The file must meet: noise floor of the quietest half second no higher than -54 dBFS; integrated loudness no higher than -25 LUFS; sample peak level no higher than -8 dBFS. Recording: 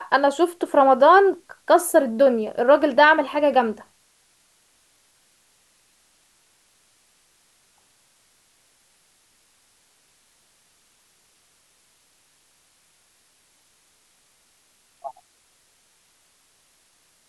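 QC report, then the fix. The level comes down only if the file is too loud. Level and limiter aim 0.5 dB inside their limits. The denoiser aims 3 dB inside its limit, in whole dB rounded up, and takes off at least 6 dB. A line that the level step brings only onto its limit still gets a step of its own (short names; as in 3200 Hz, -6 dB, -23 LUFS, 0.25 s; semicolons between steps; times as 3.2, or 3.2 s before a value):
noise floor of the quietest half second -62 dBFS: OK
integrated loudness -18.0 LUFS: fail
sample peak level -5.0 dBFS: fail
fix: gain -7.5 dB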